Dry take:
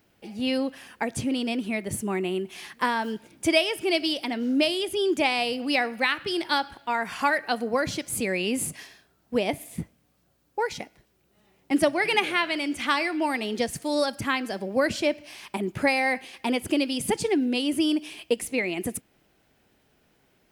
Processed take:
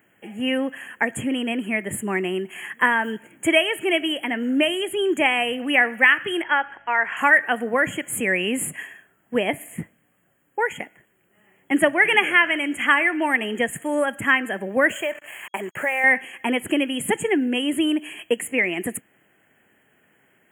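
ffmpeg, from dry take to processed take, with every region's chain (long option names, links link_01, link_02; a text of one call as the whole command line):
ffmpeg -i in.wav -filter_complex "[0:a]asettb=1/sr,asplit=3[link_01][link_02][link_03];[link_01]atrim=end=6.424[link_04];[link_02]atrim=start=6.42:end=7.17,asetpts=PTS-STARTPTS,afade=type=in:duration=0.004:curve=qsin,afade=type=out:start_time=0.746:duration=0.004:curve=qsin,highpass=410,lowpass=3500,aeval=exprs='val(0)+0.000794*(sin(2*PI*50*n/s)+sin(2*PI*2*50*n/s)/2+sin(2*PI*3*50*n/s)/3+sin(2*PI*4*50*n/s)/4+sin(2*PI*5*50*n/s)/5)':channel_layout=same[link_05];[link_03]atrim=start=7.166[link_06];[link_04][link_05]acrossfade=duration=0.004:curve1=hsin:curve2=qsin[link_07];[link_07][link_06]acrossfade=duration=0.004:curve1=qsin:curve2=hsin,asettb=1/sr,asplit=3[link_08][link_09][link_10];[link_08]atrim=end=14.894[link_11];[link_09]atrim=start=14.89:end=16.04,asetpts=PTS-STARTPTS,afade=type=in:duration=0.004:curve=qsin,afade=type=out:start_time=1.146:duration=0.004:curve=qsin,lowshelf=frequency=380:width_type=q:width=1.5:gain=-8.5,acompressor=threshold=-24dB:ratio=6:attack=3.2:release=140:knee=1:detection=peak,acrusher=bits=6:mix=0:aa=0.5[link_12];[link_10]atrim=start=16.036[link_13];[link_11][link_12]acrossfade=duration=0.004:curve1=hsin:curve2=qsin[link_14];[link_14][link_13]acrossfade=duration=0.004:curve1=qsin:curve2=hsin,highpass=130,afftfilt=real='re*(1-between(b*sr/4096,3300,6600))':imag='im*(1-between(b*sr/4096,3300,6600))':win_size=4096:overlap=0.75,equalizer=frequency=1800:width=3:gain=11,volume=2.5dB" out.wav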